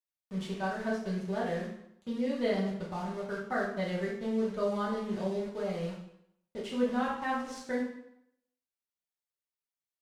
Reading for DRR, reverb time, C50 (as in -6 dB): -7.0 dB, 0.75 s, 3.5 dB